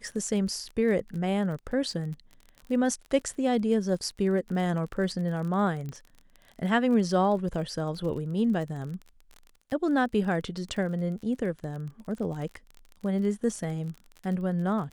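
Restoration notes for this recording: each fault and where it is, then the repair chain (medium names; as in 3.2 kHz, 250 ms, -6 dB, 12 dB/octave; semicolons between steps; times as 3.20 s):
crackle 32 per s -36 dBFS
5.89 s: pop -26 dBFS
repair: de-click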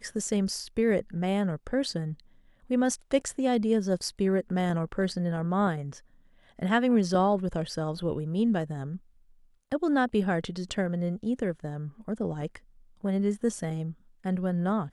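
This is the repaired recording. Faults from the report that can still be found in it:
nothing left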